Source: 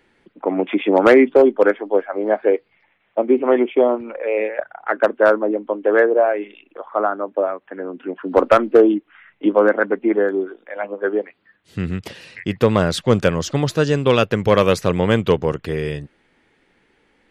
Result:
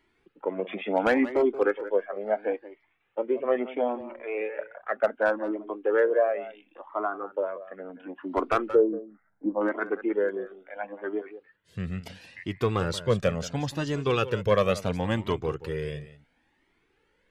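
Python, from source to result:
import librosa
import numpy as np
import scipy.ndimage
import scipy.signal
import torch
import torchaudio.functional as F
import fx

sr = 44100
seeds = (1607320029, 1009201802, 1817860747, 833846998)

p1 = fx.gaussian_blur(x, sr, sigma=7.9, at=(8.7, 9.61))
p2 = p1 + fx.echo_single(p1, sr, ms=180, db=-15.0, dry=0)
p3 = fx.comb_cascade(p2, sr, direction='rising', hz=0.72)
y = p3 * librosa.db_to_amplitude(-5.0)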